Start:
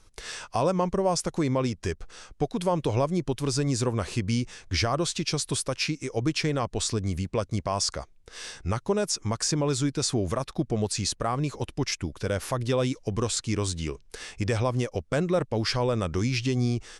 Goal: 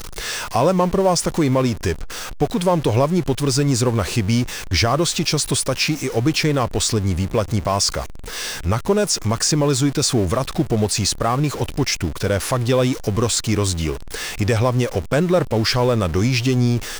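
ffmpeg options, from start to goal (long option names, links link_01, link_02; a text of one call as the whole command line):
ffmpeg -i in.wav -af "aeval=exprs='val(0)+0.5*0.0211*sgn(val(0))':channel_layout=same,volume=7dB" out.wav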